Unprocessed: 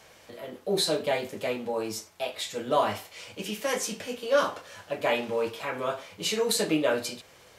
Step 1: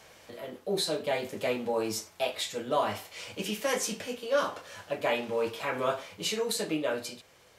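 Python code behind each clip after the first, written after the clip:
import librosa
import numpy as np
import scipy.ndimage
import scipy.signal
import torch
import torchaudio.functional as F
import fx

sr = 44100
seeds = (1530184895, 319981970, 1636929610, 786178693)

y = fx.rider(x, sr, range_db=4, speed_s=0.5)
y = y * librosa.db_to_amplitude(-2.0)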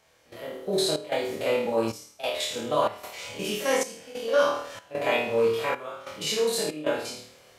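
y = fx.spec_steps(x, sr, hold_ms=50)
y = fx.room_flutter(y, sr, wall_m=4.5, rt60_s=0.54)
y = fx.step_gate(y, sr, bpm=94, pattern='..xxxx.xxxxx', floor_db=-12.0, edge_ms=4.5)
y = y * librosa.db_to_amplitude(2.5)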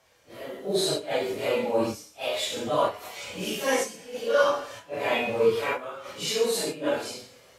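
y = fx.phase_scramble(x, sr, seeds[0], window_ms=100)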